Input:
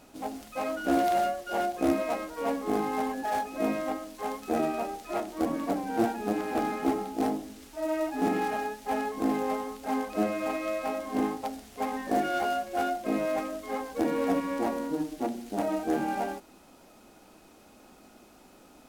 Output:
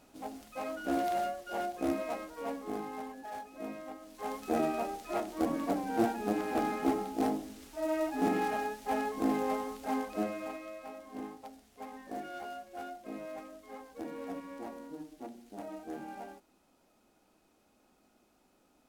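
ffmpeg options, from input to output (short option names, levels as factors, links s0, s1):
-af "volume=1.58,afade=t=out:st=2.17:d=0.97:silence=0.473151,afade=t=in:st=3.98:d=0.42:silence=0.298538,afade=t=out:st=9.81:d=0.89:silence=0.266073"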